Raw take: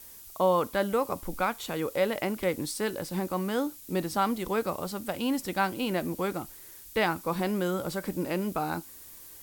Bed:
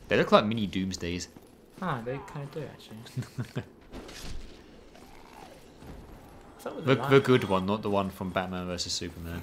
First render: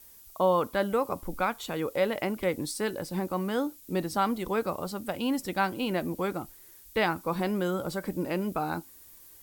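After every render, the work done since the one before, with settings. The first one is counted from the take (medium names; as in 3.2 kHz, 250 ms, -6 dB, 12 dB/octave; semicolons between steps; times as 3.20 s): noise reduction 6 dB, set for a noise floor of -48 dBFS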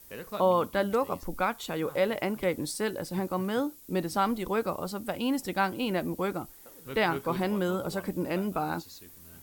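add bed -17.5 dB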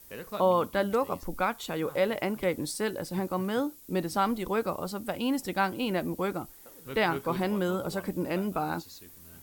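no audible change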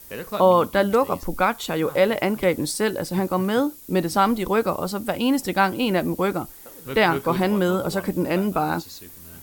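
trim +8 dB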